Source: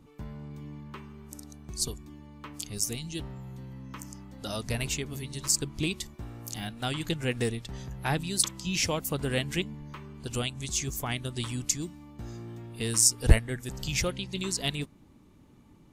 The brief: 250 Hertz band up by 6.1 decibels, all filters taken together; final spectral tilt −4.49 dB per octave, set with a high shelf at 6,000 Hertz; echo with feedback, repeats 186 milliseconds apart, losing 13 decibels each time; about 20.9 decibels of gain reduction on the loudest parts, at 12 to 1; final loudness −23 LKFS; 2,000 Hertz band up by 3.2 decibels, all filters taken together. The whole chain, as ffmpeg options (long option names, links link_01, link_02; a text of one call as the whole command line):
ffmpeg -i in.wav -af "equalizer=frequency=250:width_type=o:gain=8,equalizer=frequency=2000:width_type=o:gain=5,highshelf=frequency=6000:gain=-8,acompressor=threshold=-32dB:ratio=12,aecho=1:1:186|372|558:0.224|0.0493|0.0108,volume=14.5dB" out.wav